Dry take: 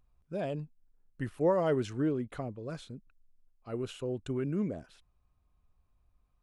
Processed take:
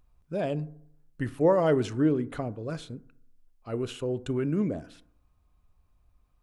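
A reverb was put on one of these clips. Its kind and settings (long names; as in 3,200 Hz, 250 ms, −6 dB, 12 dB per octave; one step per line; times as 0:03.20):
feedback delay network reverb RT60 0.67 s, low-frequency decay 1.05×, high-frequency decay 0.35×, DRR 15 dB
level +5 dB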